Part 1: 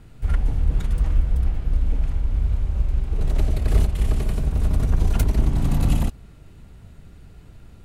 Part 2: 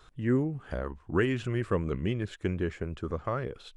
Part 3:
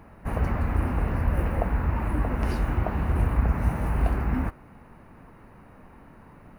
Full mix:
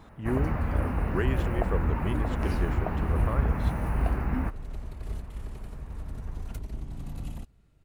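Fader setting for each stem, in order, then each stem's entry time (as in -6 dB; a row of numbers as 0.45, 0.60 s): -17.5, -3.5, -2.5 dB; 1.35, 0.00, 0.00 s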